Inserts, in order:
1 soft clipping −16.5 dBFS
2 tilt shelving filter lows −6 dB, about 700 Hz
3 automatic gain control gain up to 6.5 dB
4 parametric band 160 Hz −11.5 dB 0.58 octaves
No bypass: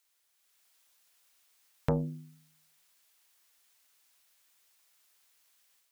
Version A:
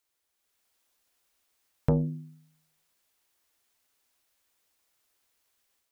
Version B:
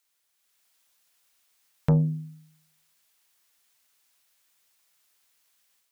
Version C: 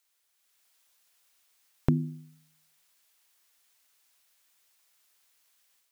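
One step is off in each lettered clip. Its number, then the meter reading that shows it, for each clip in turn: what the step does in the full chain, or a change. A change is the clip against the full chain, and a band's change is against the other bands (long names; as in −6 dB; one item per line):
2, change in crest factor −3.5 dB
4, 125 Hz band +10.5 dB
1, distortion level −11 dB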